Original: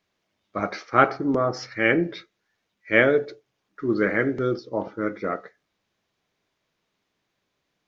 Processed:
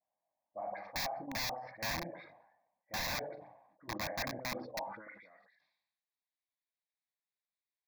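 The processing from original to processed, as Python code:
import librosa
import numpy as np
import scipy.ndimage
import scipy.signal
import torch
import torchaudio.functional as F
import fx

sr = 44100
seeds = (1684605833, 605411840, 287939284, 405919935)

y = fx.high_shelf(x, sr, hz=2000.0, db=-10.5)
y = fx.hum_notches(y, sr, base_hz=50, count=6)
y = fx.level_steps(y, sr, step_db=12)
y = fx.air_absorb(y, sr, metres=300.0)
y = fx.dispersion(y, sr, late='highs', ms=51.0, hz=1700.0)
y = fx.filter_sweep_bandpass(y, sr, from_hz=720.0, to_hz=4200.0, start_s=4.78, end_s=5.29, q=2.4)
y = (np.mod(10.0 ** (32.0 / 20.0) * y + 1.0, 2.0) - 1.0) / 10.0 ** (32.0 / 20.0)
y = fx.fixed_phaser(y, sr, hz=2000.0, stages=8)
y = fx.sustainer(y, sr, db_per_s=62.0)
y = F.gain(torch.from_numpy(y), 3.5).numpy()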